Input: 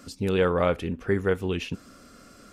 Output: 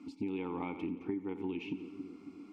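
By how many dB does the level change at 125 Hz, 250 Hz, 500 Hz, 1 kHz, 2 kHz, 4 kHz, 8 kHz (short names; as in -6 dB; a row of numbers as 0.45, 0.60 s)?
-18.0 dB, -6.5 dB, -17.5 dB, -13.0 dB, -16.5 dB, -17.0 dB, n/a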